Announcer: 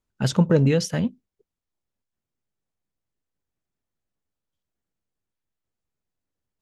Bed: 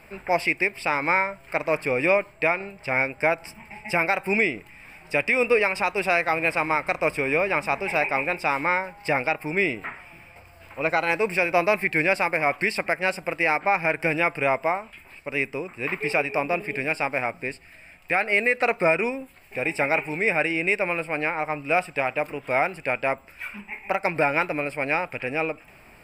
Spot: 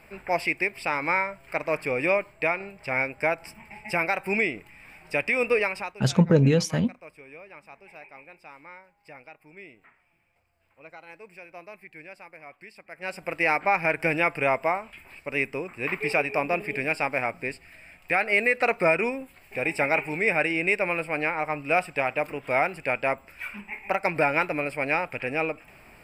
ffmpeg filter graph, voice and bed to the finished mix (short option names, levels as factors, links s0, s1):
-filter_complex "[0:a]adelay=5800,volume=0.944[s0];[1:a]volume=8.91,afade=t=out:st=5.62:d=0.38:silence=0.1,afade=t=in:st=12.89:d=0.56:silence=0.0794328[s1];[s0][s1]amix=inputs=2:normalize=0"